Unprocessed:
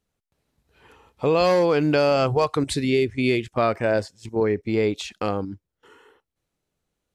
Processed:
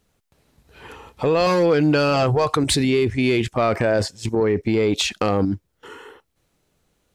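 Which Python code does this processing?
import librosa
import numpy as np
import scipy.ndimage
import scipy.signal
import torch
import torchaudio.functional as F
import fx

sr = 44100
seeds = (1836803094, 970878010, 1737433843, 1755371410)

p1 = fx.comb(x, sr, ms=6.3, depth=0.6, at=(1.46, 2.23))
p2 = fx.over_compress(p1, sr, threshold_db=-29.0, ratio=-1.0)
p3 = p1 + (p2 * 10.0 ** (2.0 / 20.0))
y = 10.0 ** (-8.0 / 20.0) * np.tanh(p3 / 10.0 ** (-8.0 / 20.0))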